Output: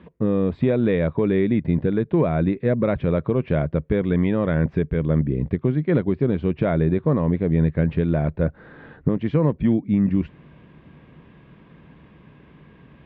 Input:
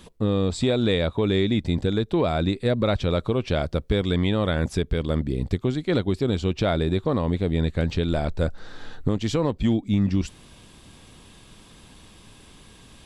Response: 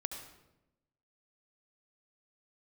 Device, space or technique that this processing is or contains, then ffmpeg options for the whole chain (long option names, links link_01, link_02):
bass cabinet: -af "highpass=70,equalizer=frequency=100:width_type=q:width=4:gain=-7,equalizer=frequency=150:width_type=q:width=4:gain=8,equalizer=frequency=790:width_type=q:width=4:gain=-6,equalizer=frequency=1300:width_type=q:width=4:gain=-5,lowpass=frequency=2100:width=0.5412,lowpass=frequency=2100:width=1.3066,volume=2.5dB"